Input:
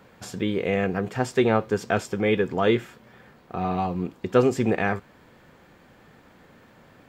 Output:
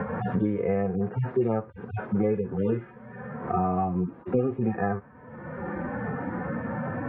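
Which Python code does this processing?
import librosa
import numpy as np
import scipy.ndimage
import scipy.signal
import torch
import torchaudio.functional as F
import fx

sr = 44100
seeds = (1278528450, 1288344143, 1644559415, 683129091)

y = fx.hpss_only(x, sr, part='harmonic')
y = scipy.signal.sosfilt(scipy.signal.butter(4, 1700.0, 'lowpass', fs=sr, output='sos'), y)
y = fx.band_squash(y, sr, depth_pct=100)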